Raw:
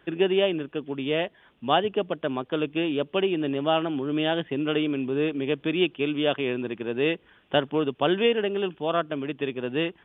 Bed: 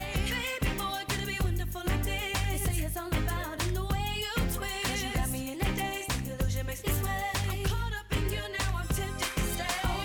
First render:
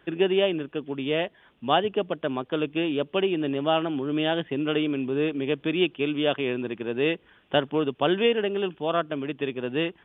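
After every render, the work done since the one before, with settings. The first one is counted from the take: no audible change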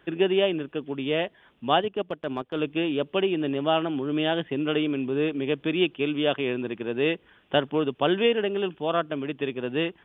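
1.81–2.59 s: transient shaper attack -5 dB, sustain -10 dB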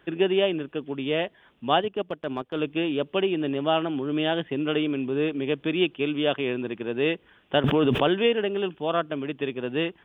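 7.64–8.08 s: level flattener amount 100%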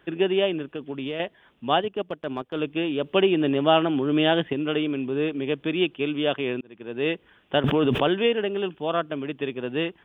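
0.74–1.20 s: compression, threshold -26 dBFS; 3.04–4.53 s: gain +4.5 dB; 6.61–7.11 s: fade in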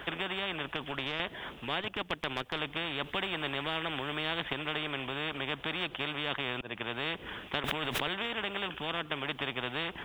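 compression 1.5:1, threshold -31 dBFS, peak gain reduction 6.5 dB; spectrum-flattening compressor 4:1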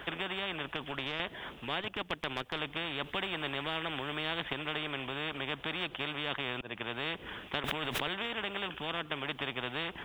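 trim -1.5 dB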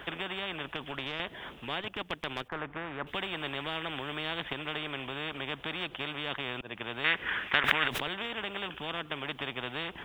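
2.48–3.07 s: resonant high shelf 2.4 kHz -13.5 dB, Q 1.5; 7.04–7.88 s: peaking EQ 1.8 kHz +14.5 dB 1.5 oct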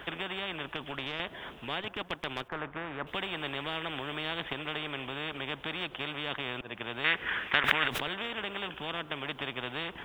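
feedback echo behind a band-pass 140 ms, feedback 76%, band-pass 660 Hz, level -18 dB

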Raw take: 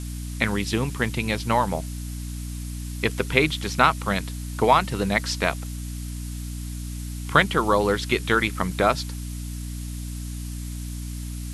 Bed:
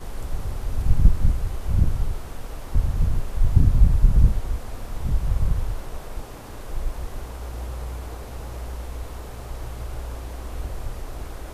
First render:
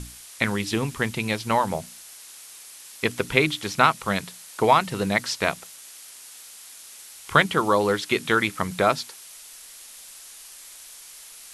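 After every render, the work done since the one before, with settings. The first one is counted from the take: hum notches 60/120/180/240/300 Hz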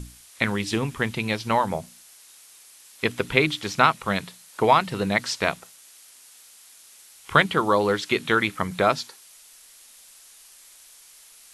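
noise print and reduce 6 dB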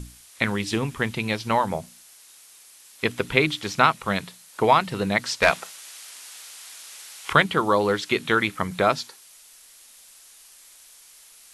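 5.42–7.33 s: overdrive pedal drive 17 dB, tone 5.2 kHz, clips at -3.5 dBFS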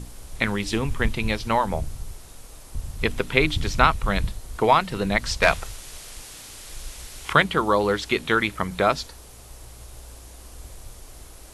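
add bed -11 dB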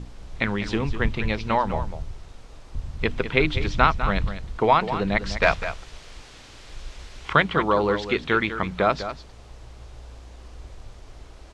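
distance through air 140 m; on a send: delay 201 ms -11 dB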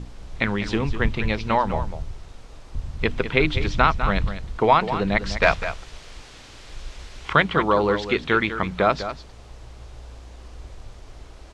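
trim +1.5 dB; peak limiter -3 dBFS, peak gain reduction 2.5 dB

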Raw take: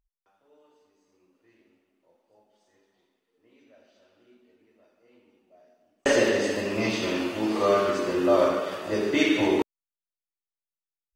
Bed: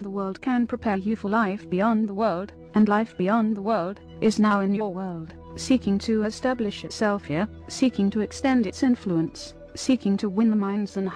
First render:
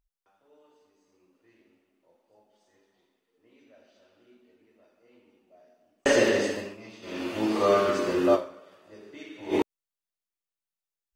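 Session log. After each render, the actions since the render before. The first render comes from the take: 6.39–7.40 s: dip -20 dB, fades 0.38 s; 8.34–9.55 s: dip -22 dB, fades 0.38 s exponential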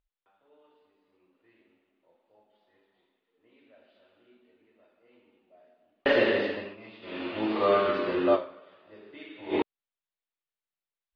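steep low-pass 4.1 kHz 48 dB/octave; bass shelf 380 Hz -4.5 dB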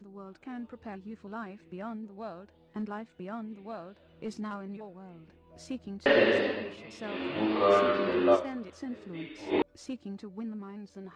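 add bed -17.5 dB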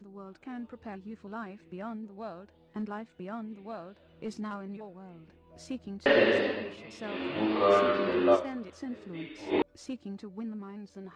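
no audible change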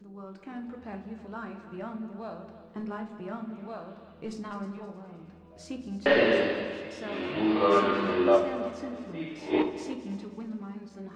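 multi-head delay 105 ms, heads second and third, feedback 44%, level -15 dB; simulated room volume 100 m³, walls mixed, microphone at 0.48 m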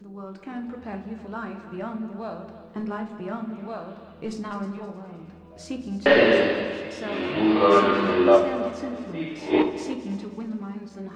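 trim +5.5 dB

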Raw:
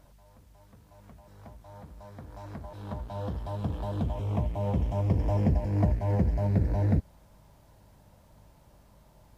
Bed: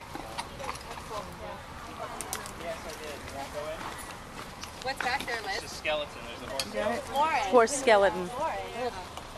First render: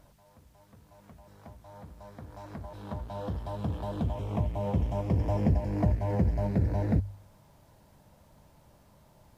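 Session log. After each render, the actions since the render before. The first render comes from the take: de-hum 50 Hz, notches 2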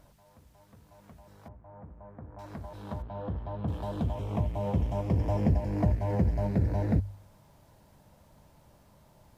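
1.48–2.39 s: Gaussian low-pass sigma 5 samples; 3.02–3.68 s: distance through air 380 m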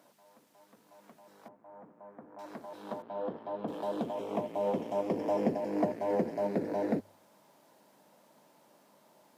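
high-pass 230 Hz 24 dB/octave; dynamic bell 480 Hz, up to +5 dB, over -47 dBFS, Q 1.1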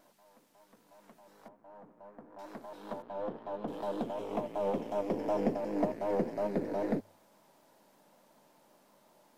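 partial rectifier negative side -3 dB; vibrato 5.3 Hz 47 cents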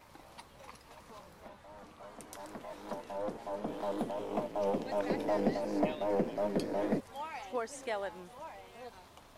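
add bed -15.5 dB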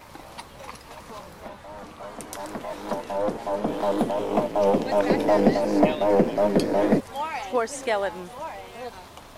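trim +12 dB

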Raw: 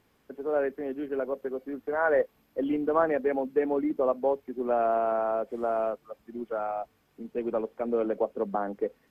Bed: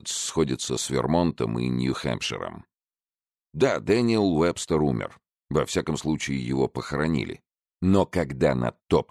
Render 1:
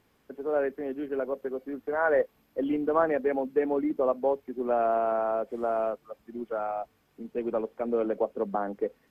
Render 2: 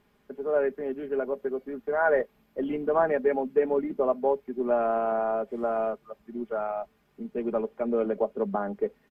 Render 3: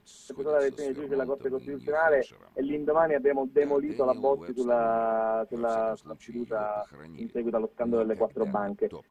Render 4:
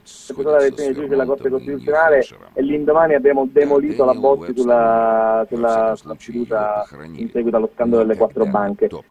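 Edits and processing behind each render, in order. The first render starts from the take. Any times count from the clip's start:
no audible change
tone controls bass +2 dB, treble -5 dB; comb 4.9 ms, depth 49%
add bed -22.5 dB
trim +11.5 dB; peak limiter -3 dBFS, peak gain reduction 3 dB

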